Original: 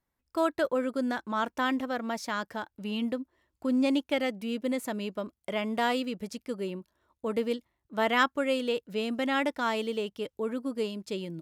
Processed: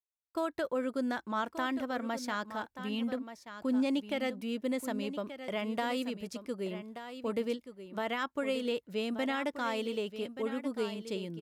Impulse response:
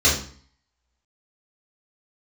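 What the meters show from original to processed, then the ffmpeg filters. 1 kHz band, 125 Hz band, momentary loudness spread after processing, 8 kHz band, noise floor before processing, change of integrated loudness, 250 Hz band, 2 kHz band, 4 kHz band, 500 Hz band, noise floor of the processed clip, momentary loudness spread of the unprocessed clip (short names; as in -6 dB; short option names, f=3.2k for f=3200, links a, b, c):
-5.5 dB, n/a, 7 LU, -3.5 dB, -84 dBFS, -4.5 dB, -3.5 dB, -6.0 dB, -4.5 dB, -4.0 dB, -78 dBFS, 10 LU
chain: -filter_complex "[0:a]alimiter=limit=-20.5dB:level=0:latency=1:release=139,asplit=2[a][b];[b]aecho=0:1:1180:0.282[c];[a][c]amix=inputs=2:normalize=0,agate=range=-33dB:threshold=-45dB:ratio=3:detection=peak,volume=-3dB"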